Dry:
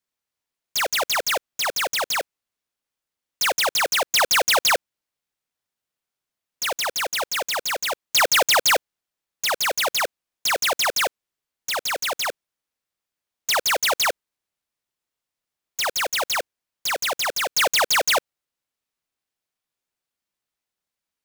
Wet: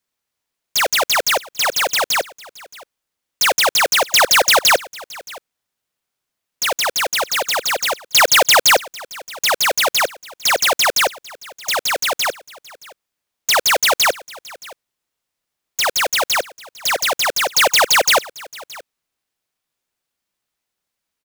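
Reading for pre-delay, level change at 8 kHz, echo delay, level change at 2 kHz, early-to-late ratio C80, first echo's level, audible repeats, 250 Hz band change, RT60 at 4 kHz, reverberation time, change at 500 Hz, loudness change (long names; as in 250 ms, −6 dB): no reverb audible, +6.0 dB, 622 ms, +6.0 dB, no reverb audible, −21.5 dB, 1, +6.0 dB, no reverb audible, no reverb audible, +6.0 dB, +6.0 dB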